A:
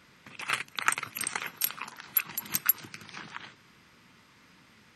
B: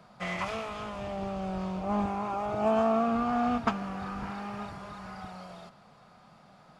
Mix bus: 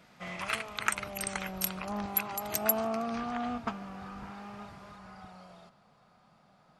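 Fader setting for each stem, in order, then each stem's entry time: -3.5, -7.0 dB; 0.00, 0.00 s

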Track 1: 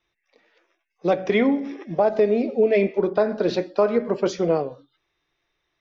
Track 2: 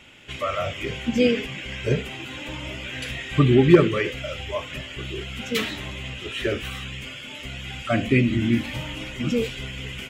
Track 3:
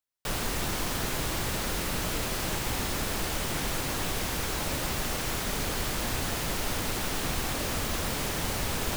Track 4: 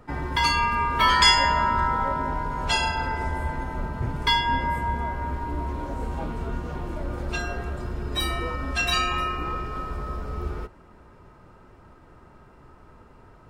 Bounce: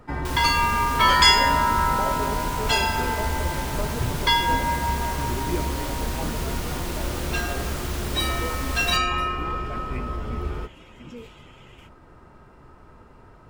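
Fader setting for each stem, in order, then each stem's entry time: -15.0, -17.5, -2.5, +1.5 dB; 0.00, 1.80, 0.00, 0.00 s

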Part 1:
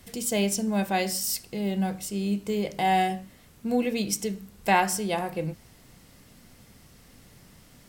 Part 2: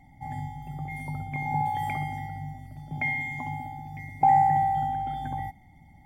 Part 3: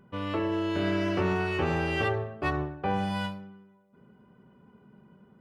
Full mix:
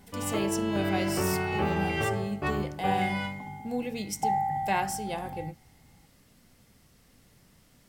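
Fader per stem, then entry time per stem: -7.0, -8.0, -1.5 dB; 0.00, 0.00, 0.00 s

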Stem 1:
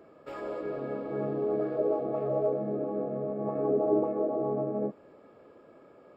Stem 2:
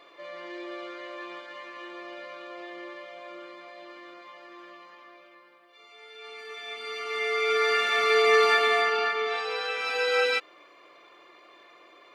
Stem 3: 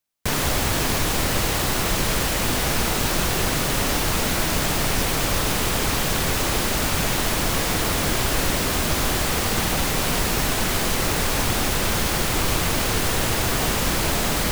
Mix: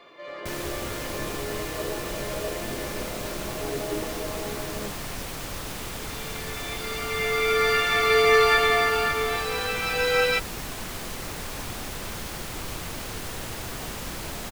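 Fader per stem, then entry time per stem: -5.5, +2.0, -12.5 dB; 0.00, 0.00, 0.20 s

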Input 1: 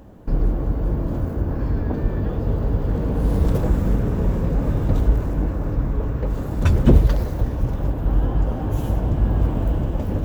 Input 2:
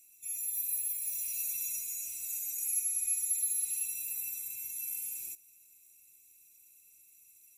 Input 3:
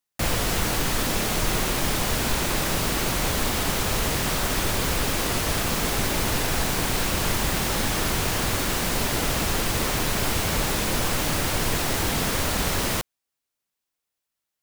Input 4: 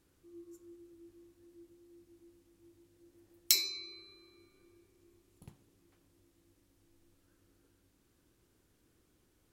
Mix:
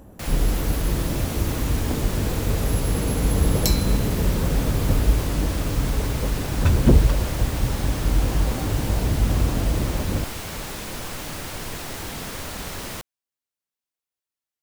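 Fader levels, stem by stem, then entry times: -1.5, -6.5, -8.0, +1.0 dB; 0.00, 0.00, 0.00, 0.15 s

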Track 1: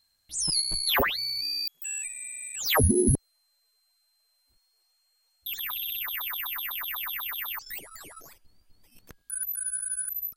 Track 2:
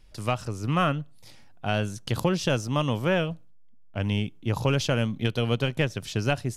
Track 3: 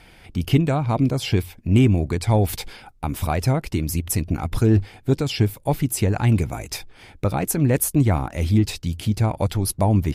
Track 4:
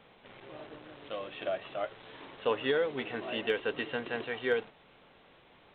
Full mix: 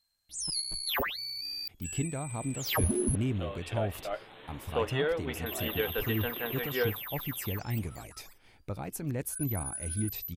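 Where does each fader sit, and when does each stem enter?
-7.0 dB, off, -15.5 dB, -1.0 dB; 0.00 s, off, 1.45 s, 2.30 s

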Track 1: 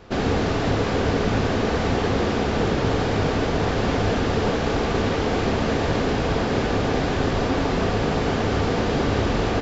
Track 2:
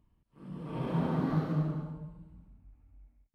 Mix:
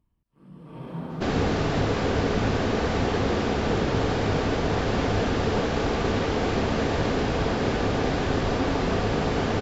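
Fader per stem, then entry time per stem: -2.5, -3.5 dB; 1.10, 0.00 s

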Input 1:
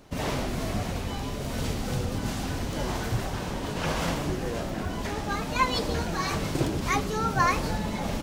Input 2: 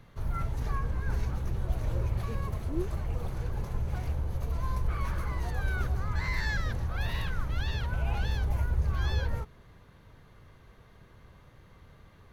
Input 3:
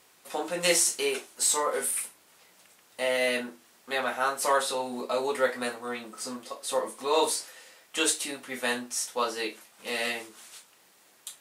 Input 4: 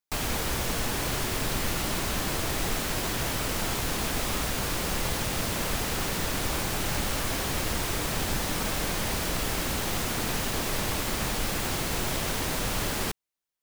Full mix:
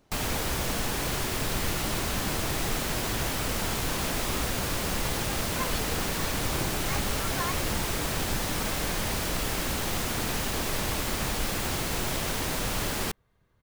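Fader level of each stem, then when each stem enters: -11.0 dB, -14.0 dB, off, -0.5 dB; 0.00 s, 2.40 s, off, 0.00 s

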